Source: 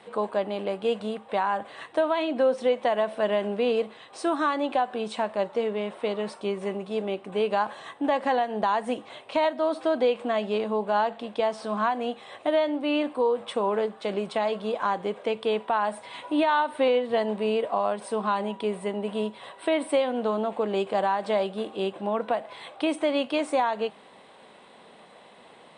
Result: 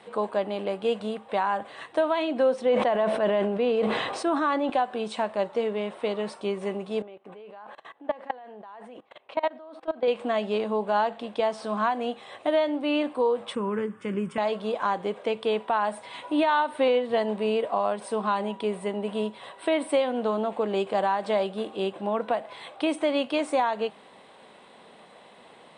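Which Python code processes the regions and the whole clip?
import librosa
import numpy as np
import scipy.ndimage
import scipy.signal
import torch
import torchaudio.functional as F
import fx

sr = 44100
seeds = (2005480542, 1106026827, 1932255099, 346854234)

y = fx.chain(x, sr, fx.high_shelf(hz=3800.0, db=-9.5),
    fx.sustainer(db_per_s=33.0), at=(2.61, 4.7))
y = fx.chain(y, sr, fx.bass_treble(bass_db=-8, treble_db=-14),
    fx.level_steps(step_db=22), at=(7.02, 10.08))
y = fx.chain(y, sr, fx.peak_eq(hz=96.0, db=12.0, octaves=2.2),
    fx.fixed_phaser(hz=1700.0, stages=4), at=(13.55, 14.38))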